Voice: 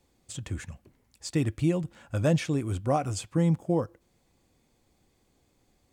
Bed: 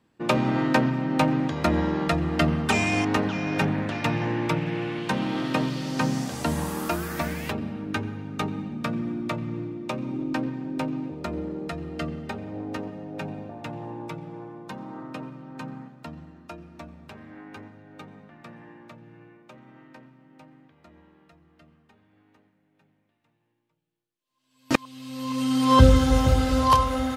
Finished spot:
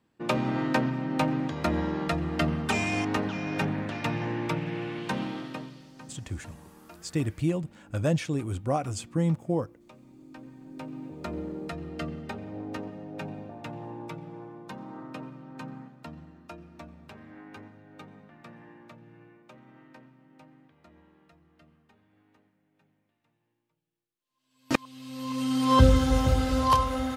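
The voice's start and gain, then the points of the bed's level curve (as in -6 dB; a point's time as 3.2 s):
5.80 s, -1.5 dB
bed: 5.21 s -4.5 dB
5.95 s -22.5 dB
10.16 s -22.5 dB
11.3 s -3.5 dB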